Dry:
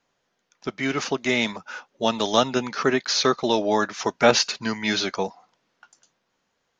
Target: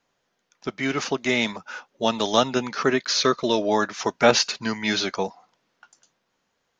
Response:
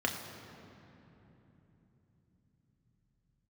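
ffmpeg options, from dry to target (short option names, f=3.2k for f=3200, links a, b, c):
-filter_complex "[0:a]asettb=1/sr,asplit=3[a][b][c];[a]atrim=end=2.924[d];[b]atrim=start=2.92:end=3.69,asetpts=PTS-STARTPTS,afade=t=in:d=0.004:c=qsin,afade=t=out:st=0.766:d=0.004:c=qsin,asuperstop=centerf=800:order=4:qfactor=4.6[e];[c]atrim=start=3.686[f];[d][e]acrossfade=d=0.004:c1=hsin:c2=qsin[g];[g][f]acrossfade=d=0.004:c1=qsin:c2=hsin"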